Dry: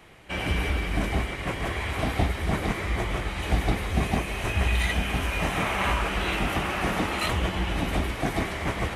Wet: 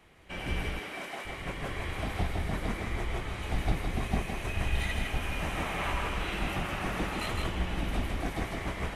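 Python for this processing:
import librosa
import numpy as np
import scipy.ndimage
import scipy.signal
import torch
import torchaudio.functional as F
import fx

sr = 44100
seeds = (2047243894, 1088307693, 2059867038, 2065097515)

y = fx.octave_divider(x, sr, octaves=2, level_db=-1.0)
y = fx.highpass(y, sr, hz=fx.line((0.62, 240.0), (1.25, 670.0)), slope=12, at=(0.62, 1.25), fade=0.02)
y = y + 10.0 ** (-3.5 / 20.0) * np.pad(y, (int(161 * sr / 1000.0), 0))[:len(y)]
y = y * librosa.db_to_amplitude(-8.5)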